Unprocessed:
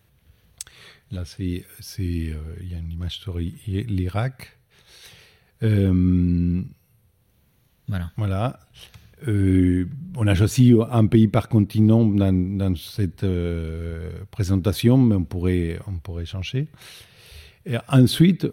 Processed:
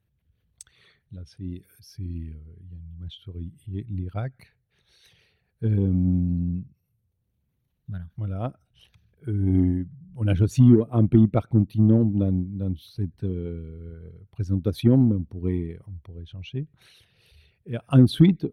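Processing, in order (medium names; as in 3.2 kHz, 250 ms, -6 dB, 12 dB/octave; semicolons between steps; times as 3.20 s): resonances exaggerated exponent 1.5; Chebyshev shaper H 8 -37 dB, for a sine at -4 dBFS; upward expansion 1.5:1, over -34 dBFS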